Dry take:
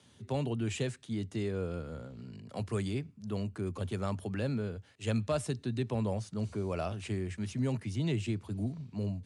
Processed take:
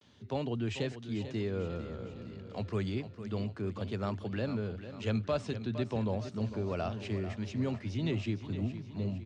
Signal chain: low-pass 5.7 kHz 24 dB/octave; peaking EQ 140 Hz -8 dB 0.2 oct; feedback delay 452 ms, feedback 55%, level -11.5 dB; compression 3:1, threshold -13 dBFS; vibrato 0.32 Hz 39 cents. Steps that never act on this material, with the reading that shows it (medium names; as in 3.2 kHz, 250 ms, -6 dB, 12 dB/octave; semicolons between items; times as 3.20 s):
compression, threshold -13 dBFS: peak at its input -19.5 dBFS